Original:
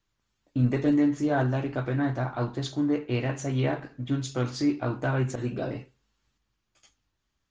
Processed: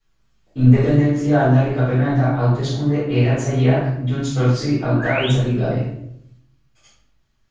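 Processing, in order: painted sound rise, 4.99–5.30 s, 1.5–3.9 kHz -34 dBFS; simulated room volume 150 m³, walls mixed, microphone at 3.9 m; trim -4.5 dB

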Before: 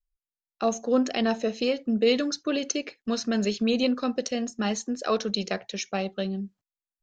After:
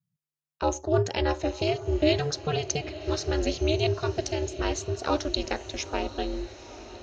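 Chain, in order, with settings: ring modulator 150 Hz; echo that smears into a reverb 926 ms, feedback 52%, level -14.5 dB; trim +2 dB

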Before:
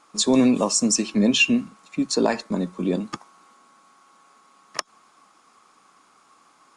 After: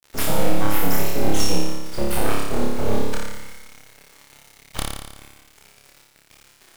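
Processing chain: octave divider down 2 oct, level -2 dB; compression 2.5:1, threshold -31 dBFS, peak gain reduction 13 dB; word length cut 8-bit, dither none; full-wave rectifier; on a send: flutter echo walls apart 4.9 m, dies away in 1.1 s; on the sum: trim +6 dB

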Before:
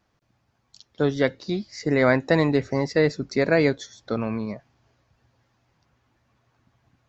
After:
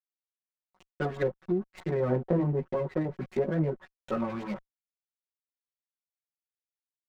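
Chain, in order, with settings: small samples zeroed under -34 dBFS; comb 5.4 ms, depth 99%; LFO low-pass saw up 9.5 Hz 850–4000 Hz; chorus voices 2, 1.1 Hz, delay 14 ms, depth 3 ms; low-pass that closes with the level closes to 550 Hz, closed at -19 dBFS; sliding maximum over 5 samples; trim -4.5 dB

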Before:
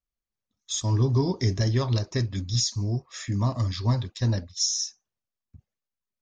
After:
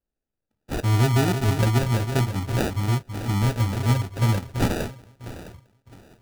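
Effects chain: echo whose repeats swap between lows and highs 329 ms, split 1.5 kHz, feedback 50%, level -8.5 dB; sample-and-hold 41×; trim +3 dB

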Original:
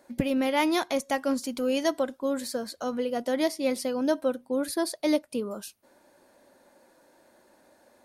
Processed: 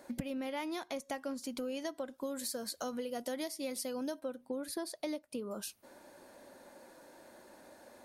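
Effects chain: 2.18–4.20 s: treble shelf 4.8 kHz +11 dB; compression 8:1, threshold -40 dBFS, peak gain reduction 20 dB; trim +3.5 dB

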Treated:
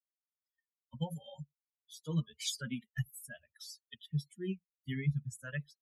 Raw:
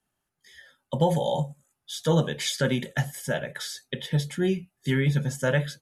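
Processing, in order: expander on every frequency bin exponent 3; amplifier tone stack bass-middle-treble 6-0-2; trim +11 dB

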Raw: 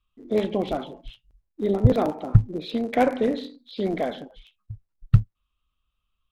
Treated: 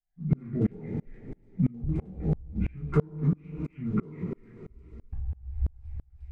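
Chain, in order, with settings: rotating-head pitch shifter -8.5 st; tilt EQ -2.5 dB/octave; on a send: feedback echo behind a high-pass 354 ms, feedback 80%, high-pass 4.3 kHz, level -16 dB; on the sum: two-slope reverb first 0.26 s, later 2.6 s, from -22 dB, DRR -4 dB; compression 6:1, threshold -20 dBFS, peak gain reduction 19 dB; sawtooth tremolo in dB swelling 3 Hz, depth 31 dB; trim +2.5 dB

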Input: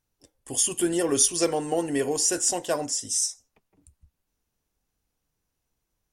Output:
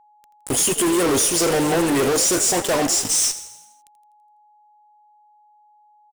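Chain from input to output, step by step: fuzz box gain 41 dB, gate -38 dBFS; frequency-shifting echo 83 ms, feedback 56%, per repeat +55 Hz, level -14 dB; whistle 840 Hz -49 dBFS; trim -3.5 dB

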